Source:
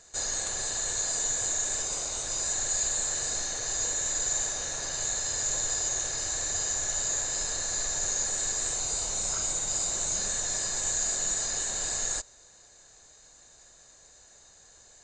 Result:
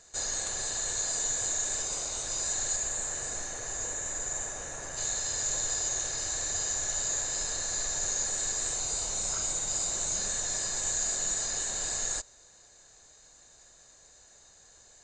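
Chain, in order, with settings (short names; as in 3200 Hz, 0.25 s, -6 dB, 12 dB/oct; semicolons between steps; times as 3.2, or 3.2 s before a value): 2.75–4.96 bell 4400 Hz -7 dB -> -14 dB 1 oct; gain -1.5 dB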